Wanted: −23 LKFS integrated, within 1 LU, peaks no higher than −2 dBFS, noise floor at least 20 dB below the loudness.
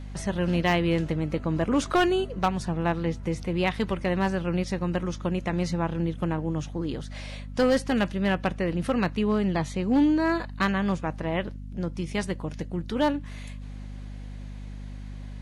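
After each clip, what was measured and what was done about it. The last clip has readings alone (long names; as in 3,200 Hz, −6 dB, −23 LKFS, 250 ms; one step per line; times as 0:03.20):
share of clipped samples 0.4%; peaks flattened at −15.0 dBFS; mains hum 50 Hz; hum harmonics up to 250 Hz; level of the hum −35 dBFS; integrated loudness −27.0 LKFS; sample peak −15.0 dBFS; target loudness −23.0 LKFS
→ clipped peaks rebuilt −15 dBFS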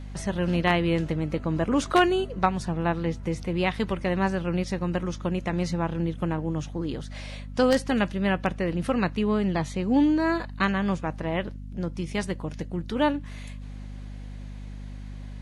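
share of clipped samples 0.0%; mains hum 50 Hz; hum harmonics up to 250 Hz; level of the hum −35 dBFS
→ mains-hum notches 50/100/150/200/250 Hz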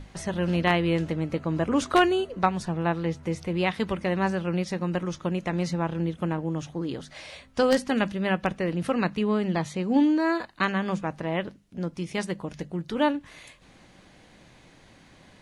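mains hum none found; integrated loudness −27.0 LKFS; sample peak −5.0 dBFS; target loudness −23.0 LKFS
→ level +4 dB
brickwall limiter −2 dBFS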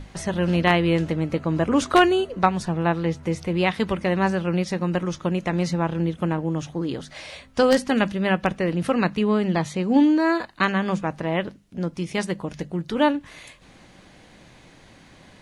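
integrated loudness −23.0 LKFS; sample peak −2.0 dBFS; background noise floor −51 dBFS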